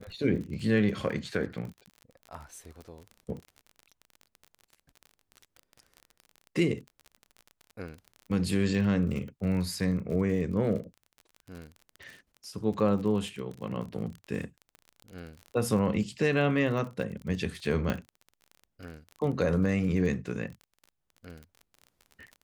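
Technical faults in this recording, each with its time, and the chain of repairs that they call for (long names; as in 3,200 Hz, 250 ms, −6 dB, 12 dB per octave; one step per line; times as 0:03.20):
surface crackle 34 per second −37 dBFS
0:17.90: click −16 dBFS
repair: click removal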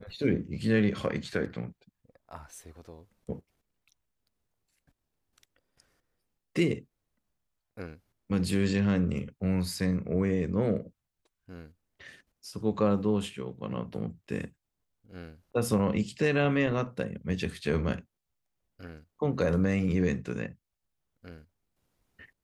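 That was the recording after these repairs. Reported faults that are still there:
none of them is left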